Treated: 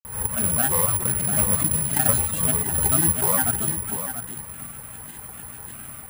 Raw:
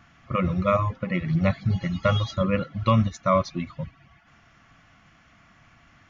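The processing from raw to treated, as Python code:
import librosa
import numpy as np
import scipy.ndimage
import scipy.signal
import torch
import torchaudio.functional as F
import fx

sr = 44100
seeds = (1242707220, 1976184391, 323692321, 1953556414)

p1 = fx.bin_compress(x, sr, power=0.6)
p2 = fx.low_shelf(p1, sr, hz=73.0, db=7.5)
p3 = fx.granulator(p2, sr, seeds[0], grain_ms=100.0, per_s=20.0, spray_ms=100.0, spread_st=7)
p4 = (np.mod(10.0 ** (19.0 / 20.0) * p3 + 1.0, 2.0) - 1.0) / 10.0 ** (19.0 / 20.0)
p5 = p3 + F.gain(torch.from_numpy(p4), -7.0).numpy()
p6 = p5 + 10.0 ** (-9.5 / 20.0) * np.pad(p5, (int(693 * sr / 1000.0), 0))[:len(p5)]
p7 = (np.kron(scipy.signal.resample_poly(p6, 1, 4), np.eye(4)[0]) * 4)[:len(p6)]
p8 = fx.pre_swell(p7, sr, db_per_s=89.0)
y = F.gain(torch.from_numpy(p8), -8.5).numpy()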